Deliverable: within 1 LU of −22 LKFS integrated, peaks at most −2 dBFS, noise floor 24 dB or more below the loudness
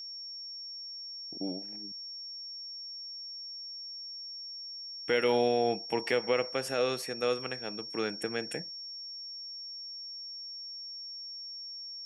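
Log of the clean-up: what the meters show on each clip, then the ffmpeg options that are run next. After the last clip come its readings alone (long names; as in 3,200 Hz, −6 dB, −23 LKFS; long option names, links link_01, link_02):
interfering tone 5,500 Hz; level of the tone −40 dBFS; integrated loudness −34.5 LKFS; sample peak −14.0 dBFS; target loudness −22.0 LKFS
→ -af "bandreject=frequency=5500:width=30"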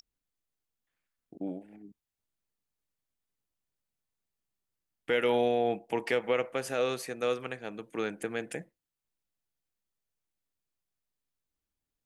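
interfering tone none found; integrated loudness −32.0 LKFS; sample peak −14.5 dBFS; target loudness −22.0 LKFS
→ -af "volume=10dB"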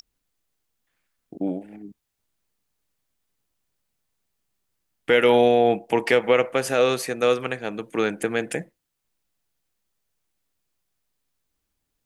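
integrated loudness −22.0 LKFS; sample peak −4.5 dBFS; background noise floor −79 dBFS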